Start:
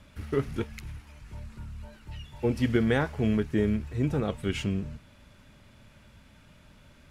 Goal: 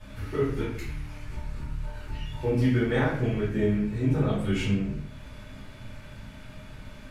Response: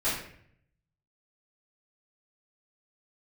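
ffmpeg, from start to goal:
-filter_complex "[0:a]acompressor=threshold=-48dB:ratio=1.5[link_01];[1:a]atrim=start_sample=2205,afade=type=out:start_time=0.35:duration=0.01,atrim=end_sample=15876,asetrate=42336,aresample=44100[link_02];[link_01][link_02]afir=irnorm=-1:irlink=0"

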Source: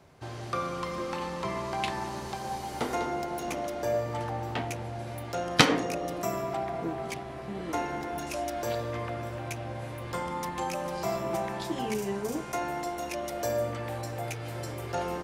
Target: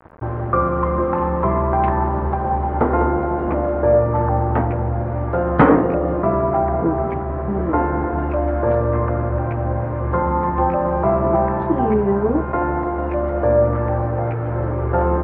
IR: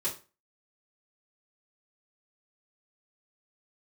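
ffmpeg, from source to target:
-filter_complex "[0:a]asplit=2[link_01][link_02];[link_02]acontrast=56,volume=-2dB[link_03];[link_01][link_03]amix=inputs=2:normalize=0,equalizer=frequency=70:width_type=o:width=0.25:gain=14.5,bandreject=frequency=710:width=17,aresample=16000,acrusher=bits=6:mix=0:aa=0.000001,aresample=44100,aeval=exprs='1.5*sin(PI/2*2.24*val(0)/1.5)':channel_layout=same,lowpass=frequency=1400:width=0.5412,lowpass=frequency=1400:width=1.3066,volume=-4.5dB"

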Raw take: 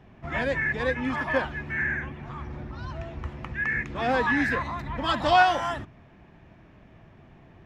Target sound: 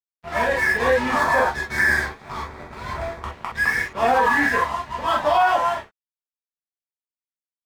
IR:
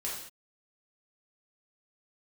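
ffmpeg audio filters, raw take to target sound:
-filter_complex "[0:a]equalizer=frequency=880:width_type=o:width=2:gain=12,bandreject=frequency=50:width_type=h:width=6,bandreject=frequency=100:width_type=h:width=6,bandreject=frequency=150:width_type=h:width=6,aeval=exprs='sgn(val(0))*max(abs(val(0))-0.0237,0)':channel_layout=same[link_01];[1:a]atrim=start_sample=2205,atrim=end_sample=3087[link_02];[link_01][link_02]afir=irnorm=-1:irlink=0,dynaudnorm=framelen=140:gausssize=11:maxgain=7.5dB,asettb=1/sr,asplit=3[link_03][link_04][link_05];[link_03]atrim=end=1.204[link_06];[link_04]atrim=start=1.2:end=3.23,asetpts=PTS-STARTPTS,afade=type=in:duration=0.004:curve=qsin,afade=type=out:start_time=2.026:duration=0.004:curve=qsin,equalizer=frequency=2900:width_type=o:width=0.22:gain=-12[link_07];[link_05]atrim=start=3.226[link_08];[link_06][link_07]acrossfade=duration=0.004:curve1=hsin:curve2=qsin[link_09];[link_09][link_08]acrossfade=duration=0.004:curve1=qsin:curve2=hsin,alimiter=level_in=7dB:limit=-1dB:release=50:level=0:latency=1,volume=-8dB"

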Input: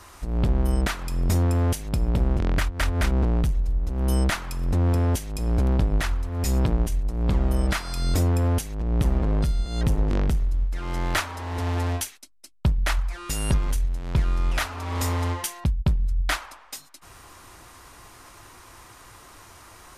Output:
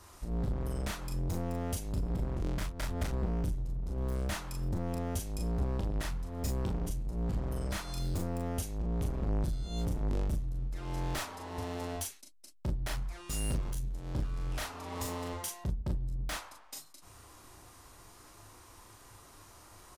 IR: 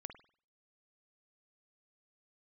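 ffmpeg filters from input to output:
-af "asoftclip=type=hard:threshold=-23dB,equalizer=frequency=1900:width=0.7:gain=-5.5,aecho=1:1:29|39:0.376|0.596,volume=-7.5dB"

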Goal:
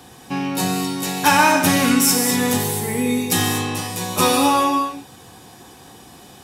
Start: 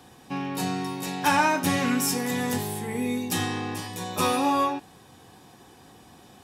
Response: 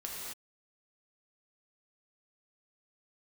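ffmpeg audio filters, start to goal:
-filter_complex "[0:a]asplit=2[link_01][link_02];[1:a]atrim=start_sample=2205,asetrate=48510,aresample=44100,highshelf=frequency=3300:gain=10[link_03];[link_02][link_03]afir=irnorm=-1:irlink=0,volume=-4dB[link_04];[link_01][link_04]amix=inputs=2:normalize=0,volume=4dB"

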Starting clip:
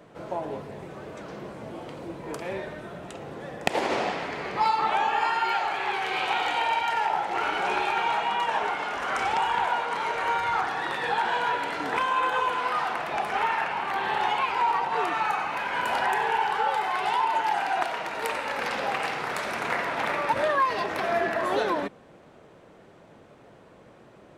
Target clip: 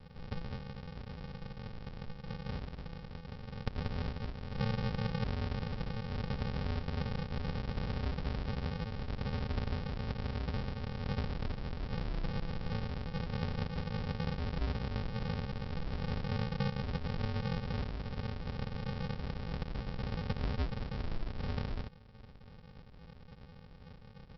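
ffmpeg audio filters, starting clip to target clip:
ffmpeg -i in.wav -af "aresample=11025,acrusher=samples=33:mix=1:aa=0.000001,aresample=44100,acompressor=threshold=-49dB:ratio=1.5" out.wav

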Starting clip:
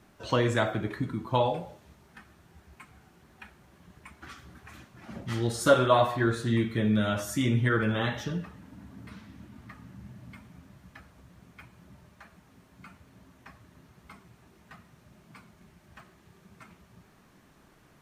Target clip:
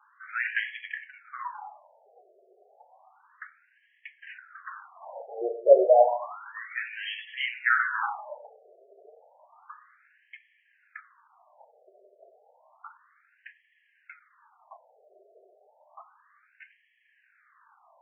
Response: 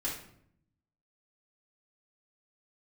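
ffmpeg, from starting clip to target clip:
-filter_complex "[0:a]asettb=1/sr,asplit=3[link_01][link_02][link_03];[link_01]atrim=end=4.384[link_04];[link_02]atrim=start=4.38:end=5.33,asetpts=PTS-STARTPTS,afade=type=in:duration=0.004:curve=qsin,afade=type=out:start_time=0.946:duration=0.004:curve=qsin,highshelf=frequency=2000:width_type=q:width=3:gain=-11.5[link_05];[link_03]atrim=start=5.326[link_06];[link_04][link_05]acrossfade=duration=0.004:curve1=hsin:curve2=qsin[link_07];[link_07][link_06]acrossfade=duration=0.004:curve1=qsin:curve2=hsin,asplit=2[link_08][link_09];[link_09]alimiter=limit=-19dB:level=0:latency=1:release=22,volume=2dB[link_10];[link_08][link_10]amix=inputs=2:normalize=0,adynamicsmooth=sensitivity=7.5:basefreq=1700,afftfilt=real='re*between(b*sr/1024,510*pow(2400/510,0.5+0.5*sin(2*PI*0.31*pts/sr))/1.41,510*pow(2400/510,0.5+0.5*sin(2*PI*0.31*pts/sr))*1.41)':imag='im*between(b*sr/1024,510*pow(2400/510,0.5+0.5*sin(2*PI*0.31*pts/sr))/1.41,510*pow(2400/510,0.5+0.5*sin(2*PI*0.31*pts/sr))*1.41)':win_size=1024:overlap=0.75,volume=2dB"

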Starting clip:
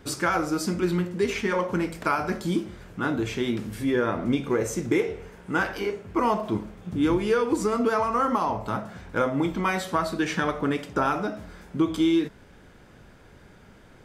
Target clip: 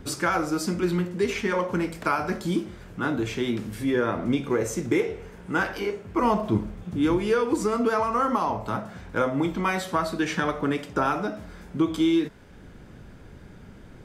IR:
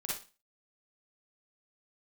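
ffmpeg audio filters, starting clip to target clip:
-filter_complex "[0:a]asettb=1/sr,asplit=3[link_01][link_02][link_03];[link_01]atrim=end=6.224[link_04];[link_02]atrim=start=6.22:end=6.84,asetpts=PTS-STARTPTS,afade=type=in:duration=0.004:curve=qsin,afade=type=out:start_time=0.616:duration=0.004:curve=qsin,lowshelf=frequency=190:gain=9.5[link_05];[link_03]atrim=start=6.836[link_06];[link_04][link_05]acrossfade=duration=0.004:curve1=hsin:curve2=qsin[link_07];[link_07][link_06]acrossfade=duration=0.004:curve1=qsin:curve2=hsin,acrossover=split=350|1100[link_08][link_09][link_10];[link_08]acompressor=mode=upward:threshold=-37dB:ratio=2.5[link_11];[link_11][link_09][link_10]amix=inputs=3:normalize=0"

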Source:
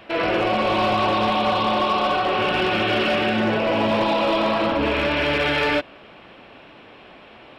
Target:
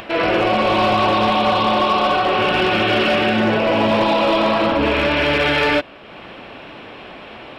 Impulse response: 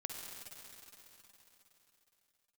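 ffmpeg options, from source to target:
-af "acompressor=mode=upward:threshold=-33dB:ratio=2.5,volume=4dB"

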